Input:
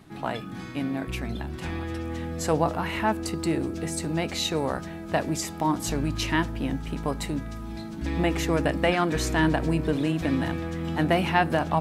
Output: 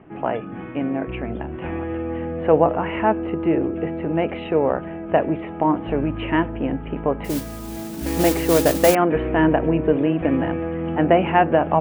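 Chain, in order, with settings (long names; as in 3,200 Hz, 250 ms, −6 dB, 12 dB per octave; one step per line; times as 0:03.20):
Butterworth low-pass 3,000 Hz 72 dB per octave
parametric band 500 Hz +10.5 dB 1.7 octaves
0:07.24–0:08.95: noise that follows the level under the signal 11 dB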